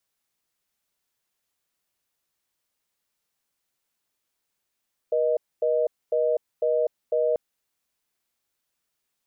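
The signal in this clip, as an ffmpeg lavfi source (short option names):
-f lavfi -i "aevalsrc='0.075*(sin(2*PI*480*t)+sin(2*PI*620*t))*clip(min(mod(t,0.5),0.25-mod(t,0.5))/0.005,0,1)':d=2.24:s=44100"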